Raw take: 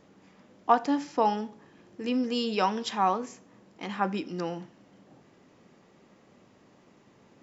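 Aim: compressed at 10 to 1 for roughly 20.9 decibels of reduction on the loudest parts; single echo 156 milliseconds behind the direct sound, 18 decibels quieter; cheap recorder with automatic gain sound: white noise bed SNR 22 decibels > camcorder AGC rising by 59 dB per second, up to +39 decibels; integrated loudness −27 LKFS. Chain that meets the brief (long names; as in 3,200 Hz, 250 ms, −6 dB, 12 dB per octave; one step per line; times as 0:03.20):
downward compressor 10 to 1, threshold −37 dBFS
single-tap delay 156 ms −18 dB
white noise bed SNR 22 dB
camcorder AGC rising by 59 dB per second, up to +39 dB
level +12.5 dB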